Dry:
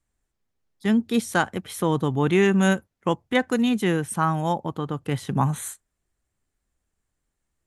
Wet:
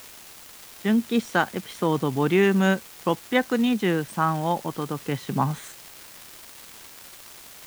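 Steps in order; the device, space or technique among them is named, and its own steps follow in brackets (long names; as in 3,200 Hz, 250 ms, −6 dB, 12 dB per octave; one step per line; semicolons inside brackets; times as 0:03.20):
78 rpm shellac record (band-pass filter 150–4,900 Hz; surface crackle 360 per second −32 dBFS; white noise bed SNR 21 dB)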